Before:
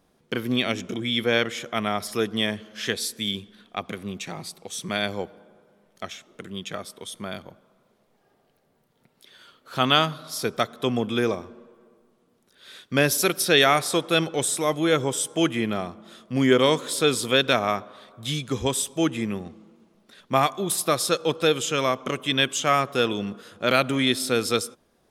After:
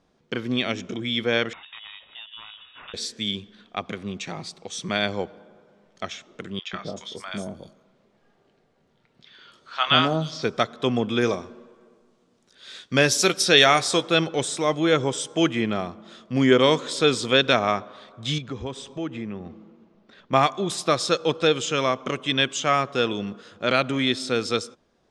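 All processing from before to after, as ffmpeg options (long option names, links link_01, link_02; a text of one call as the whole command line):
ffmpeg -i in.wav -filter_complex "[0:a]asettb=1/sr,asplit=3[link_01][link_02][link_03];[link_01]atrim=end=1.534[link_04];[link_02]atrim=start=1.53:end=2.94,asetpts=PTS-STARTPTS,afade=type=in:duration=0.004:curve=qsin,afade=type=out:start_time=1.406:duration=0.004:curve=qsin,aeval=exprs='val(0)*sin(2*PI*610*n/s)':channel_layout=same,acompressor=threshold=-38dB:ratio=4:attack=3.2:release=140:knee=1:detection=peak,lowpass=frequency=3200:width_type=q:width=0.5098,lowpass=frequency=3200:width_type=q:width=0.6013,lowpass=frequency=3200:width_type=q:width=0.9,lowpass=frequency=3200:width_type=q:width=2.563,afreqshift=-3800[link_05];[link_03]atrim=start=2.936[link_06];[link_04][link_05]acrossfade=duration=0.004:curve1=hsin:curve2=qsin[link_07];[link_07][link_06]acrossfade=duration=0.004:curve1=qsin:curve2=hsin,asettb=1/sr,asplit=3[link_08][link_09][link_10];[link_08]atrim=end=6.594[link_11];[link_09]atrim=start=6.59:end=10.43,asetpts=PTS-STARTPTS,afade=type=in:duration=0.004:curve=qsin,afade=type=out:start_time=3.836:duration=0.004:curve=qsin,asplit=2[link_12][link_13];[link_13]adelay=25,volume=-11dB[link_14];[link_12][link_14]amix=inputs=2:normalize=0,atrim=end_sample=169344,acrossover=split=780|5700[link_15][link_16][link_17];[link_15]adelay=140[link_18];[link_17]adelay=310[link_19];[link_18][link_16][link_19]amix=inputs=3:normalize=0,atrim=end_sample=169344[link_20];[link_10]atrim=start=10.426[link_21];[link_11][link_20]acrossfade=duration=0.004:curve1=hsin:curve2=qsin[link_22];[link_22][link_21]acrossfade=duration=0.004:curve1=qsin:curve2=hsin,asettb=1/sr,asplit=3[link_23][link_24][link_25];[link_23]atrim=end=11.214[link_26];[link_24]atrim=start=11.21:end=14.09,asetpts=PTS-STARTPTS,afade=type=in:duration=0.004:curve=qsin,afade=type=out:start_time=2.876:duration=0.004:curve=qsin,aemphasis=mode=production:type=cd,asplit=2[link_27][link_28];[link_28]adelay=16,volume=-13dB[link_29];[link_27][link_29]amix=inputs=2:normalize=0,atrim=end_sample=127008[link_30];[link_25]atrim=start=14.086[link_31];[link_26][link_30]acrossfade=duration=0.004:curve1=hsin:curve2=qsin[link_32];[link_32][link_31]acrossfade=duration=0.004:curve1=qsin:curve2=hsin,asettb=1/sr,asplit=3[link_33][link_34][link_35];[link_33]atrim=end=18.384[link_36];[link_34]atrim=start=18.38:end=20.33,asetpts=PTS-STARTPTS,afade=type=in:duration=0.004:curve=qsin,afade=type=out:start_time=1.946:duration=0.004:curve=qsin,aemphasis=mode=reproduction:type=75fm,acompressor=threshold=-36dB:ratio=2:attack=3.2:release=140:knee=1:detection=peak[link_37];[link_35]atrim=start=20.326[link_38];[link_36][link_37]acrossfade=duration=0.004:curve1=hsin:curve2=qsin[link_39];[link_39][link_38]acrossfade=duration=0.004:curve1=qsin:curve2=hsin,lowpass=frequency=7100:width=0.5412,lowpass=frequency=7100:width=1.3066,dynaudnorm=framelen=870:gausssize=11:maxgain=11.5dB,volume=-1dB" out.wav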